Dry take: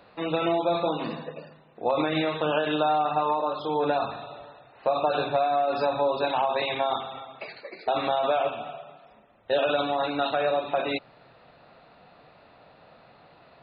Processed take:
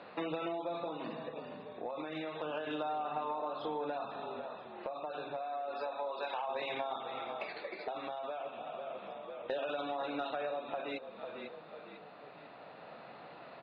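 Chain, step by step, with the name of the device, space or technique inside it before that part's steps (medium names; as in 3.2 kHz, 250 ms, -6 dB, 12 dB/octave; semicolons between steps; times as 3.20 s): 5.41–6.46 s: high-pass 300 Hz -> 770 Hz 12 dB/octave; frequency-shifting echo 497 ms, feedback 39%, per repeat -42 Hz, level -16 dB; AM radio (band-pass 180–3700 Hz; compression 5:1, threshold -39 dBFS, peak gain reduction 17.5 dB; saturation -25.5 dBFS, distortion -29 dB; tremolo 0.3 Hz, depth 38%); trim +3.5 dB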